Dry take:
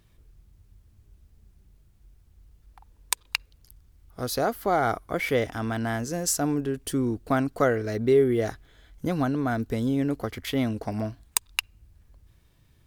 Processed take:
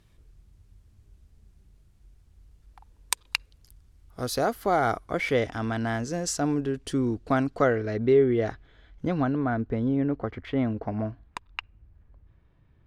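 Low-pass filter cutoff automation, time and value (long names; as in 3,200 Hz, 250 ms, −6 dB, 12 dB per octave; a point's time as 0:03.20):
0:04.73 11,000 Hz
0:05.41 6,300 Hz
0:07.44 6,300 Hz
0:07.90 3,400 Hz
0:09.11 3,400 Hz
0:09.59 1,800 Hz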